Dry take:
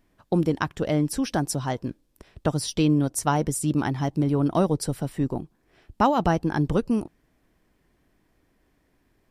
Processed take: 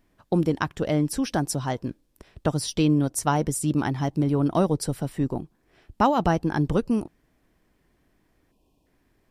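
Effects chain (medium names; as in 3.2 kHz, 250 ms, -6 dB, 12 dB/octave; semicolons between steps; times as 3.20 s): time-frequency box 8.52–8.86 s, 1.1–2.4 kHz -26 dB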